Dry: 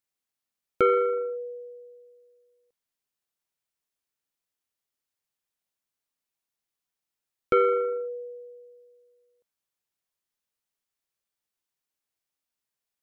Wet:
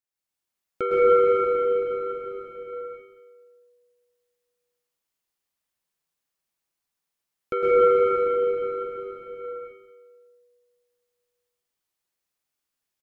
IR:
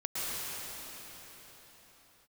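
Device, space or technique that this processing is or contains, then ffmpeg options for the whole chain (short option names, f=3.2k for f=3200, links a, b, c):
cave: -filter_complex "[0:a]aecho=1:1:181:0.316[a];[1:a]atrim=start_sample=2205[b];[a][b]afir=irnorm=-1:irlink=0,volume=-3.5dB"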